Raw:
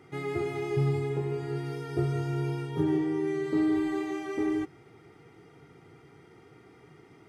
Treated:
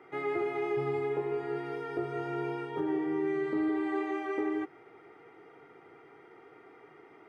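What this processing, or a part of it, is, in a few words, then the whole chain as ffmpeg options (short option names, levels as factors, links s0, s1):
DJ mixer with the lows and highs turned down: -filter_complex "[0:a]asplit=3[s0][s1][s2];[s0]afade=t=out:st=3.05:d=0.02[s3];[s1]asubboost=boost=3:cutoff=240,afade=t=in:st=3.05:d=0.02,afade=t=out:st=3.68:d=0.02[s4];[s2]afade=t=in:st=3.68:d=0.02[s5];[s3][s4][s5]amix=inputs=3:normalize=0,acrossover=split=330 2600:gain=0.1 1 0.126[s6][s7][s8];[s6][s7][s8]amix=inputs=3:normalize=0,alimiter=level_in=1.33:limit=0.0631:level=0:latency=1:release=273,volume=0.75,volume=1.58"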